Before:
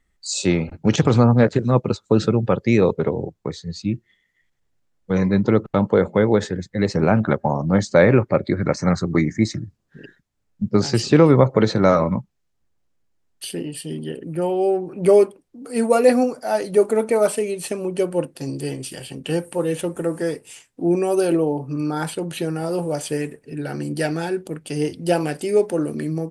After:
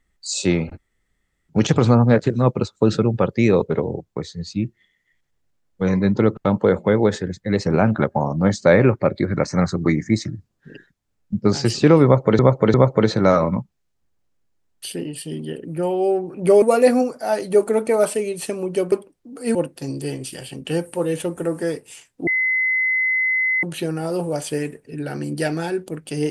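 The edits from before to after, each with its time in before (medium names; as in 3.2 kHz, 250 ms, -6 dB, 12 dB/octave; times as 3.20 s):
0.78 s: insert room tone 0.71 s
11.33–11.68 s: loop, 3 plays
15.21–15.84 s: move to 18.14 s
20.86–22.22 s: bleep 2.04 kHz -16.5 dBFS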